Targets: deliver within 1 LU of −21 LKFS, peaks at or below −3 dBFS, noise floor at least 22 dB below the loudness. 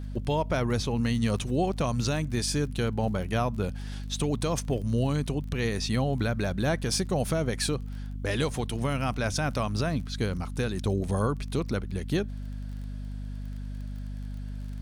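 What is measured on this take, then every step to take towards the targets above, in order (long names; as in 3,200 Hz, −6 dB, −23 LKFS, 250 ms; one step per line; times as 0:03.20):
crackle rate 26 per second; mains hum 50 Hz; hum harmonics up to 250 Hz; level of the hum −33 dBFS; integrated loudness −29.5 LKFS; sample peak −16.0 dBFS; target loudness −21.0 LKFS
→ click removal
hum removal 50 Hz, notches 5
level +8.5 dB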